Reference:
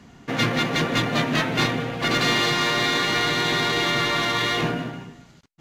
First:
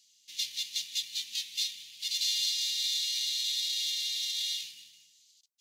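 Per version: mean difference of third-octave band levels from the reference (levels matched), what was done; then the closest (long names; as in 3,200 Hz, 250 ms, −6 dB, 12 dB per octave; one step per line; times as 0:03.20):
24.5 dB: inverse Chebyshev high-pass filter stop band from 1,500 Hz, stop band 50 dB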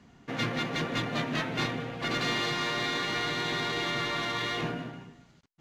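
1.0 dB: high-shelf EQ 9,900 Hz −8.5 dB
level −8.5 dB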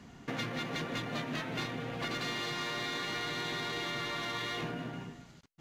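2.5 dB: downward compressor 4 to 1, threshold −31 dBFS, peak gain reduction 12 dB
level −4.5 dB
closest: second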